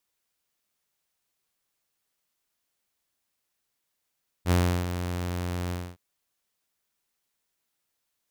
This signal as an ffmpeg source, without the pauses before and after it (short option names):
-f lavfi -i "aevalsrc='0.158*(2*mod(88.7*t,1)-1)':d=1.516:s=44100,afade=t=in:d=0.059,afade=t=out:st=0.059:d=0.345:silence=0.316,afade=t=out:st=1.26:d=0.256"